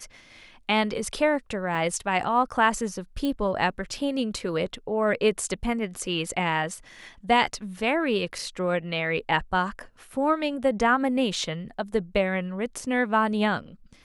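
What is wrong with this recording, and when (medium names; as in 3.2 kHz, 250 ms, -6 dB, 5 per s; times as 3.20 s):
1.75 s: dropout 2.4 ms
3.25 s: pop -17 dBFS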